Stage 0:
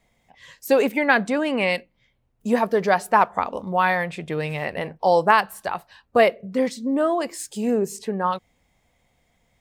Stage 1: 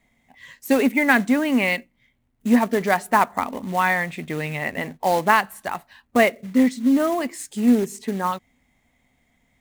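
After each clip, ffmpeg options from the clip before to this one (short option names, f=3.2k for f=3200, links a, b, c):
-af "acrusher=bits=4:mode=log:mix=0:aa=0.000001,equalizer=f=250:t=o:w=0.33:g=11,equalizer=f=500:t=o:w=0.33:g=-5,equalizer=f=2k:t=o:w=0.33:g=6,equalizer=f=5k:t=o:w=0.33:g=-4,volume=-1dB"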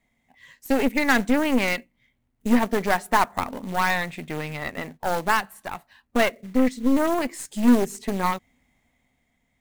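-af "dynaudnorm=f=110:g=17:m=8dB,aeval=exprs='0.944*(cos(1*acos(clip(val(0)/0.944,-1,1)))-cos(1*PI/2))+0.106*(cos(8*acos(clip(val(0)/0.944,-1,1)))-cos(8*PI/2))':c=same,volume=-6dB"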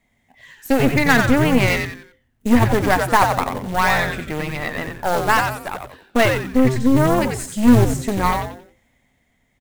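-filter_complex "[0:a]asplit=5[a][b][c][d][e];[b]adelay=90,afreqshift=-130,volume=-5dB[f];[c]adelay=180,afreqshift=-260,volume=-14.1dB[g];[d]adelay=270,afreqshift=-390,volume=-23.2dB[h];[e]adelay=360,afreqshift=-520,volume=-32.4dB[i];[a][f][g][h][i]amix=inputs=5:normalize=0,volume=4.5dB"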